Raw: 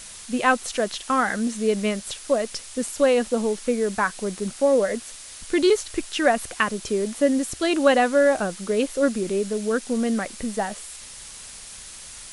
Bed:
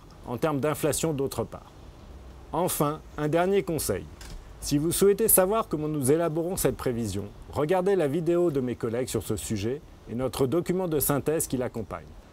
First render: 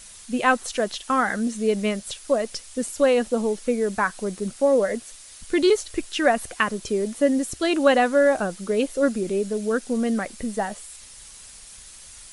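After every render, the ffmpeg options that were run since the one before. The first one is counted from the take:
ffmpeg -i in.wav -af "afftdn=noise_reduction=6:noise_floor=-41" out.wav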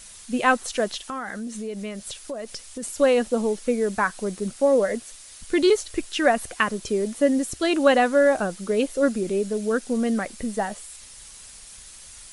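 ffmpeg -i in.wav -filter_complex "[0:a]asplit=3[link_01][link_02][link_03];[link_01]afade=type=out:start_time=1.01:duration=0.02[link_04];[link_02]acompressor=threshold=-30dB:ratio=4:attack=3.2:release=140:knee=1:detection=peak,afade=type=in:start_time=1.01:duration=0.02,afade=type=out:start_time=2.82:duration=0.02[link_05];[link_03]afade=type=in:start_time=2.82:duration=0.02[link_06];[link_04][link_05][link_06]amix=inputs=3:normalize=0" out.wav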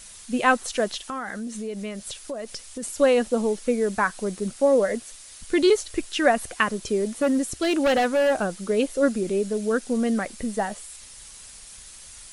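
ffmpeg -i in.wav -filter_complex "[0:a]asplit=3[link_01][link_02][link_03];[link_01]afade=type=out:start_time=6.95:duration=0.02[link_04];[link_02]asoftclip=type=hard:threshold=-17dB,afade=type=in:start_time=6.95:duration=0.02,afade=type=out:start_time=8.58:duration=0.02[link_05];[link_03]afade=type=in:start_time=8.58:duration=0.02[link_06];[link_04][link_05][link_06]amix=inputs=3:normalize=0" out.wav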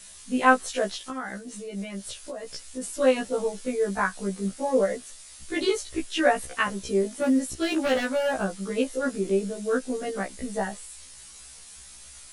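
ffmpeg -i in.wav -af "afftfilt=real='re*1.73*eq(mod(b,3),0)':imag='im*1.73*eq(mod(b,3),0)':win_size=2048:overlap=0.75" out.wav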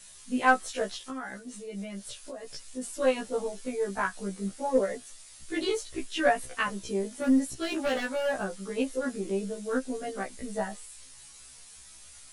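ffmpeg -i in.wav -af "flanger=delay=7.1:depth=2.2:regen=48:speed=0.8:shape=sinusoidal,aeval=exprs='0.376*(cos(1*acos(clip(val(0)/0.376,-1,1)))-cos(1*PI/2))+0.0119*(cos(6*acos(clip(val(0)/0.376,-1,1)))-cos(6*PI/2))':channel_layout=same" out.wav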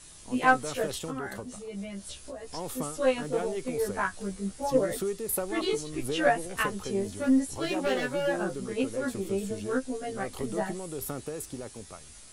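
ffmpeg -i in.wav -i bed.wav -filter_complex "[1:a]volume=-11dB[link_01];[0:a][link_01]amix=inputs=2:normalize=0" out.wav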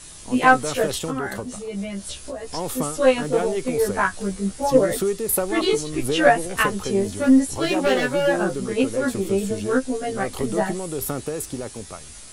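ffmpeg -i in.wav -af "volume=8.5dB,alimiter=limit=-2dB:level=0:latency=1" out.wav

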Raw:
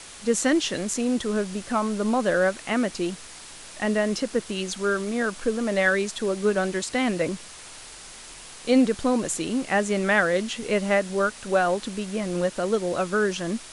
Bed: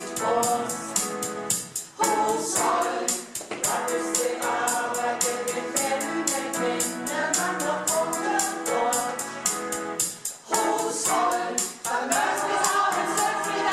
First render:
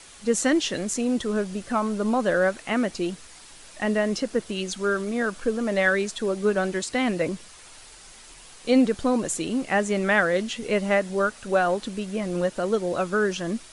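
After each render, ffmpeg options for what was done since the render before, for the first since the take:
ffmpeg -i in.wav -af "afftdn=noise_reduction=6:noise_floor=-43" out.wav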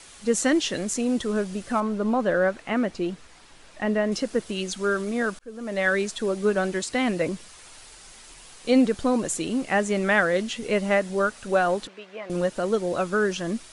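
ffmpeg -i in.wav -filter_complex "[0:a]asettb=1/sr,asplit=3[link_01][link_02][link_03];[link_01]atrim=end=1.804[link_04];[link_02]atrim=start=1.8:end=4.12,asetpts=PTS-STARTPTS,afade=type=in:duration=0.004:curve=qsin,afade=type=out:start_time=2.316:duration=0.004:curve=qsin,lowpass=frequency=2500:poles=1[link_05];[link_03]atrim=start=4.116[link_06];[link_04][link_05]acrossfade=duration=0.004:curve1=hsin:curve2=qsin[link_07];[link_07][link_06]acrossfade=duration=0.004:curve1=qsin:curve2=hsin,asettb=1/sr,asplit=3[link_08][link_09][link_10];[link_08]atrim=end=11.874[link_11];[link_09]atrim=start=11.87:end=12.3,asetpts=PTS-STARTPTS,afade=type=in:duration=0.004:curve=qsin,afade=type=out:start_time=0.426:duration=0.004:curve=qsin,highpass=660,lowpass=2600[link_12];[link_10]atrim=start=12.296[link_13];[link_11][link_12]acrossfade=duration=0.004:curve1=hsin:curve2=qsin[link_14];[link_14][link_13]acrossfade=duration=0.004:curve1=qsin:curve2=hsin,asplit=2[link_15][link_16];[link_15]atrim=end=5.39,asetpts=PTS-STARTPTS,afade=type=out:start_time=5.386:duration=0.004:curve=hsin[link_17];[link_16]atrim=start=5.39,asetpts=PTS-STARTPTS,afade=type=in:duration=0.58[link_18];[link_17][link_18]concat=n=2:v=0:a=1" out.wav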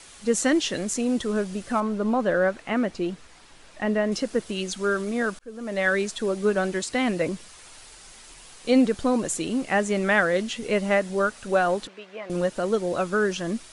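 ffmpeg -i in.wav -af anull out.wav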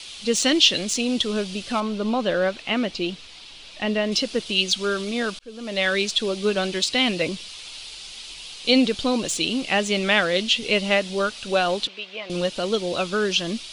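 ffmpeg -i in.wav -filter_complex "[0:a]acrossover=split=4600[link_01][link_02];[link_01]aexciter=amount=8.9:drive=4.7:freq=2600[link_03];[link_02]asoftclip=type=hard:threshold=-30.5dB[link_04];[link_03][link_04]amix=inputs=2:normalize=0" out.wav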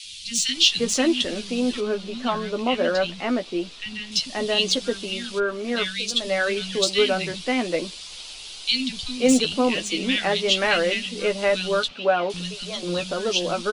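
ffmpeg -i in.wav -filter_complex "[0:a]asplit=2[link_01][link_02];[link_02]adelay=12,volume=-6.5dB[link_03];[link_01][link_03]amix=inputs=2:normalize=0,acrossover=split=190|2200[link_04][link_05][link_06];[link_04]adelay=40[link_07];[link_05]adelay=530[link_08];[link_07][link_08][link_06]amix=inputs=3:normalize=0" out.wav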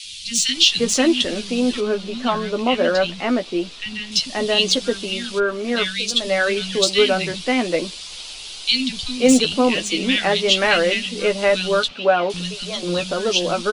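ffmpeg -i in.wav -af "volume=4dB,alimiter=limit=-2dB:level=0:latency=1" out.wav

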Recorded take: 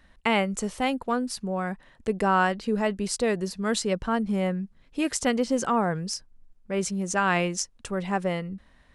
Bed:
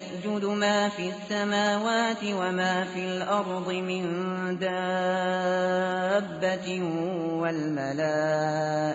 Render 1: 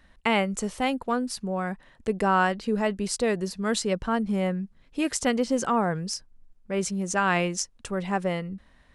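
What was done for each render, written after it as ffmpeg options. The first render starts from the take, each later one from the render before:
ffmpeg -i in.wav -af anull out.wav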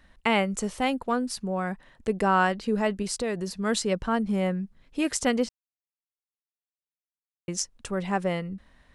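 ffmpeg -i in.wav -filter_complex "[0:a]asettb=1/sr,asplit=3[link_01][link_02][link_03];[link_01]atrim=end=3.024[link_04];[link_02]atrim=start=3.02:end=3.5,asetpts=PTS-STARTPTS,afade=type=in:duration=0.004:curve=qsin,afade=type=out:start_time=0.476:duration=0.004:curve=qsin,acompressor=threshold=-27dB:ratio=2:attack=3.2:release=140:knee=1:detection=peak[link_05];[link_03]atrim=start=3.496[link_06];[link_04][link_05]acrossfade=duration=0.004:curve1=hsin:curve2=qsin[link_07];[link_07][link_06]acrossfade=duration=0.004:curve1=qsin:curve2=hsin,asplit=3[link_08][link_09][link_10];[link_08]atrim=end=5.49,asetpts=PTS-STARTPTS,afade=type=out:start_time=5.486:duration=0.004:curve=hsin[link_11];[link_09]atrim=start=5.49:end=7.48,asetpts=PTS-STARTPTS,volume=0[link_12];[link_10]atrim=start=7.48,asetpts=PTS-STARTPTS,afade=type=in:duration=0.004:curve=hsin[link_13];[link_11][link_12][link_13]concat=n=3:v=0:a=1" out.wav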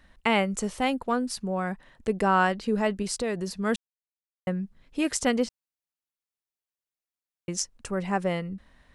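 ffmpeg -i in.wav -filter_complex "[0:a]asettb=1/sr,asplit=3[link_01][link_02][link_03];[link_01]atrim=end=7.774[link_04];[link_02]atrim=start=7.77:end=8.21,asetpts=PTS-STARTPTS,afade=type=in:duration=0.004:curve=qsin,afade=type=out:start_time=0.436:duration=0.004:curve=qsin,equalizer=frequency=3500:width=4.4:gain=-8[link_05];[link_03]atrim=start=8.206[link_06];[link_04][link_05]acrossfade=duration=0.004:curve1=hsin:curve2=qsin[link_07];[link_07][link_06]acrossfade=duration=0.004:curve1=qsin:curve2=hsin,asplit=3[link_08][link_09][link_10];[link_08]atrim=end=3.76,asetpts=PTS-STARTPTS,afade=type=out:start_time=3.756:duration=0.004:curve=hsin[link_11];[link_09]atrim=start=3.76:end=4.47,asetpts=PTS-STARTPTS,volume=0[link_12];[link_10]atrim=start=4.47,asetpts=PTS-STARTPTS,afade=type=in:duration=0.004:curve=hsin[link_13];[link_11][link_12][link_13]concat=n=3:v=0:a=1" out.wav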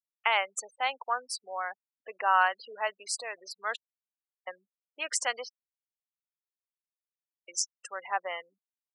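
ffmpeg -i in.wav -af "afftfilt=real='re*gte(hypot(re,im),0.02)':imag='im*gte(hypot(re,im),0.02)':win_size=1024:overlap=0.75,highpass=frequency=720:width=0.5412,highpass=frequency=720:width=1.3066" out.wav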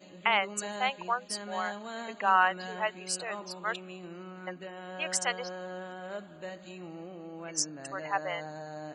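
ffmpeg -i in.wav -i bed.wav -filter_complex "[1:a]volume=-15dB[link_01];[0:a][link_01]amix=inputs=2:normalize=0" out.wav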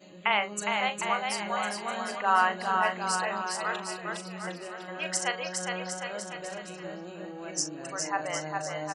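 ffmpeg -i in.wav -filter_complex "[0:a]asplit=2[link_01][link_02];[link_02]adelay=39,volume=-10.5dB[link_03];[link_01][link_03]amix=inputs=2:normalize=0,aecho=1:1:410|758.5|1055|1307|1521:0.631|0.398|0.251|0.158|0.1" out.wav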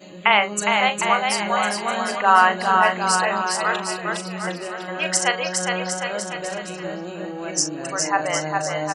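ffmpeg -i in.wav -af "volume=9.5dB,alimiter=limit=-3dB:level=0:latency=1" out.wav

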